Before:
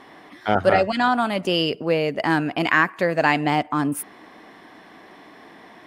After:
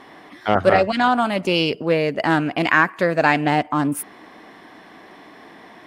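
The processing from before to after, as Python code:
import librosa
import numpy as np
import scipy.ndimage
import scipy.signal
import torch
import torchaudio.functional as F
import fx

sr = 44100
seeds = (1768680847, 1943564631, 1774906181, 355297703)

y = fx.doppler_dist(x, sr, depth_ms=0.13)
y = y * librosa.db_to_amplitude(2.0)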